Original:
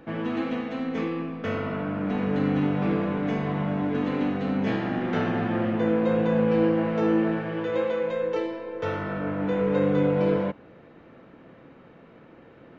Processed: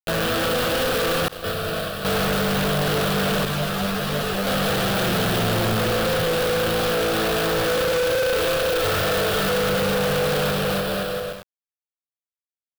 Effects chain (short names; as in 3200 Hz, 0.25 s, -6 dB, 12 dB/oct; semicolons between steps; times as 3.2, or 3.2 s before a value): limiter -21.5 dBFS, peak gain reduction 10.5 dB; vocal rider 0.5 s; 5.06–5.8 low shelf 490 Hz +6 dB; bit-crush 5-bit; soft clip -22 dBFS, distortion -23 dB; fixed phaser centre 1400 Hz, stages 8; bouncing-ball echo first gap 0.3 s, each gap 0.75×, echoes 5; 1.28–2.05 expander -23 dBFS; sample leveller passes 5; 3.45–4.47 ensemble effect